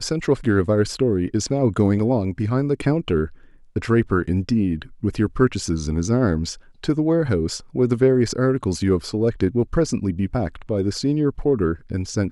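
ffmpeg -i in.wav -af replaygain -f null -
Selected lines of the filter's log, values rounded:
track_gain = +2.0 dB
track_peak = 0.404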